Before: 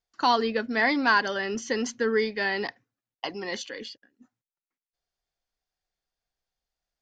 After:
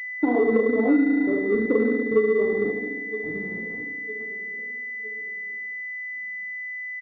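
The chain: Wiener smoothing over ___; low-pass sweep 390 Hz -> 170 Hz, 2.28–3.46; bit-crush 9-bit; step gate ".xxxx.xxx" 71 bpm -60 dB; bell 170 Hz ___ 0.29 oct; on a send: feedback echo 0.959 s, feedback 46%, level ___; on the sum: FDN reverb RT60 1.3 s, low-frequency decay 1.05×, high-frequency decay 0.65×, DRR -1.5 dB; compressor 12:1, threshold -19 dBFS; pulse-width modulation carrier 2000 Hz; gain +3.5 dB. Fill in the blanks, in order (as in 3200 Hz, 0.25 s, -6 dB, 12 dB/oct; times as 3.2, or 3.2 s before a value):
25 samples, -4 dB, -20 dB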